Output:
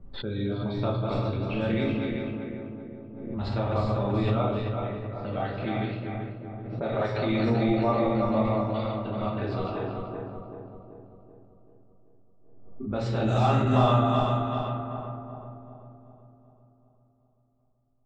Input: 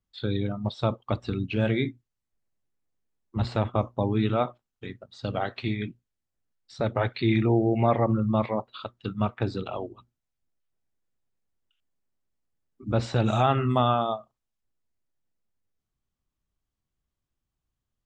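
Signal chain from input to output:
feedback delay that plays each chunk backwards 192 ms, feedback 74%, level −3.5 dB
low-pass that shuts in the quiet parts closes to 580 Hz, open at −18.5 dBFS
rectangular room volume 120 cubic metres, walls mixed, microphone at 1.2 metres
background raised ahead of every attack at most 46 dB per second
level −8 dB

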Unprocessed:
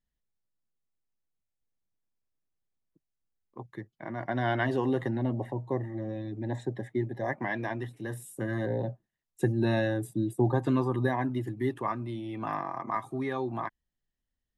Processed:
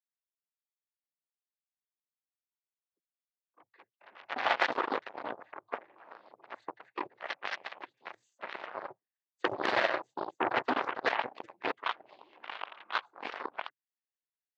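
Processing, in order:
cochlear-implant simulation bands 16
harmonic generator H 3 −20 dB, 5 −15 dB, 7 −12 dB, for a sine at −13 dBFS
band-pass filter 730–3,900 Hz
level +6 dB

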